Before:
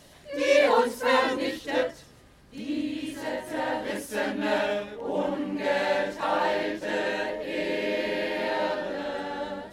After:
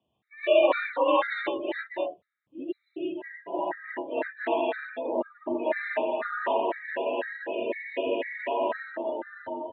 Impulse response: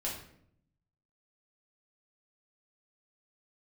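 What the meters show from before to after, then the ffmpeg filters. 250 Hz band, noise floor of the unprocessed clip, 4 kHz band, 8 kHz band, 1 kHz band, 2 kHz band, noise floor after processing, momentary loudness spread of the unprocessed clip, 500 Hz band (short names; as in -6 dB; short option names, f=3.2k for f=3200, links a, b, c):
-4.0 dB, -53 dBFS, -6.0 dB, under -35 dB, -1.5 dB, -3.0 dB, -78 dBFS, 10 LU, -1.0 dB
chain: -af "afreqshift=54,afftdn=nr=24:nf=-34,aresample=8000,aresample=44100,lowshelf=f=100:g=2.5,aecho=1:1:227:0.631,afftfilt=real='re*gt(sin(2*PI*2*pts/sr)*(1-2*mod(floor(b*sr/1024/1200),2)),0)':imag='im*gt(sin(2*PI*2*pts/sr)*(1-2*mod(floor(b*sr/1024/1200),2)),0)':win_size=1024:overlap=0.75"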